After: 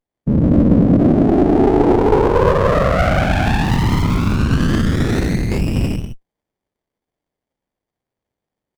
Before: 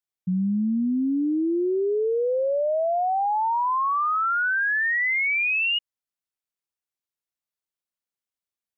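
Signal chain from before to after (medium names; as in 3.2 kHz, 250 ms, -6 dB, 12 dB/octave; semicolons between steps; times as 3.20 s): whisper effect; 5.26–5.75 s: gate with hold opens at -14 dBFS; gated-style reverb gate 360 ms flat, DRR -4.5 dB; in parallel at +1 dB: peak limiter -17.5 dBFS, peak gain reduction 11 dB; on the sum: resampled via 32 kHz; 3.64–4.36 s: short-mantissa float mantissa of 4-bit; sliding maximum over 33 samples; trim +3.5 dB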